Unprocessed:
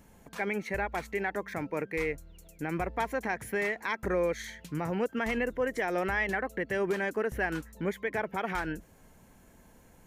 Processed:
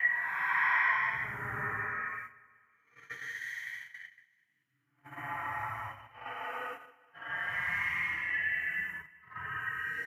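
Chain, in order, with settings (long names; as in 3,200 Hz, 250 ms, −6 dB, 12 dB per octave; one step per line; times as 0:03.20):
harmonic-percussive split with one part muted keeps percussive
hollow resonant body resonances 1,900/3,000 Hz, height 10 dB, ringing for 25 ms
extreme stretch with random phases 5.1×, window 0.25 s, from 0:03.75
octave-band graphic EQ 125/250/500/1,000/2,000/4,000/8,000 Hz +9/−6/−10/+9/+7/−8/−8 dB
noise gate −38 dBFS, range −30 dB
high-pass filter 71 Hz
repeating echo 190 ms, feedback 52%, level −21 dB
level −3 dB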